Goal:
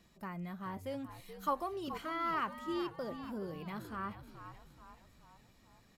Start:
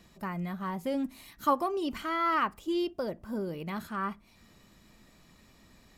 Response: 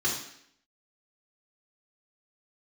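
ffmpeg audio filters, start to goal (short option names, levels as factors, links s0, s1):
-filter_complex "[0:a]asettb=1/sr,asplit=3[s0][s1][s2];[s0]atrim=end=0.774[s3];[s1]atrim=start=0.77:end=1.88,asetpts=PTS-STARTPTS,afade=t=in:d=0.004:c=qsin,afade=t=out:st=1.106:d=0.004:c=qsin,highpass=310[s4];[s2]atrim=start=1.876[s5];[s3][s4]acrossfade=d=0.004:c1=hsin:c2=qsin[s6];[s6][s5]acrossfade=d=0.004:c1=qsin:c2=hsin,asplit=2[s7][s8];[s8]asplit=6[s9][s10][s11][s12][s13][s14];[s9]adelay=428,afreqshift=-80,volume=0.299[s15];[s10]adelay=856,afreqshift=-160,volume=0.158[s16];[s11]adelay=1284,afreqshift=-240,volume=0.0841[s17];[s12]adelay=1712,afreqshift=-320,volume=0.0447[s18];[s13]adelay=2140,afreqshift=-400,volume=0.0234[s19];[s14]adelay=2568,afreqshift=-480,volume=0.0124[s20];[s15][s16][s17][s18][s19][s20]amix=inputs=6:normalize=0[s21];[s7][s21]amix=inputs=2:normalize=0,volume=0.422"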